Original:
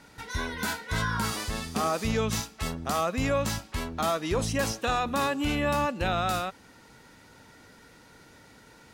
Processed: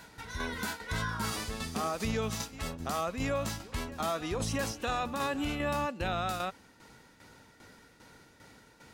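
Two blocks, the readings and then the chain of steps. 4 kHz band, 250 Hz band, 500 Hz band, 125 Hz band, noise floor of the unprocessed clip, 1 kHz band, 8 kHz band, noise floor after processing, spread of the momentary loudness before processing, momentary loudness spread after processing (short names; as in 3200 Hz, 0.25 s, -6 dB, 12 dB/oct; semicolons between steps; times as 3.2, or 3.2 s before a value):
-5.0 dB, -5.0 dB, -5.5 dB, -5.0 dB, -55 dBFS, -5.5 dB, -5.0 dB, -60 dBFS, 7 LU, 6 LU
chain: tremolo saw down 2.5 Hz, depth 65%; reverse echo 0.672 s -19 dB; limiter -23.5 dBFS, peak gain reduction 5.5 dB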